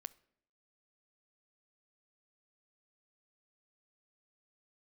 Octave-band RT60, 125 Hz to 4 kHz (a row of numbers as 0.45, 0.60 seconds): 0.75, 0.80, 0.75, 0.65, 0.65, 0.50 seconds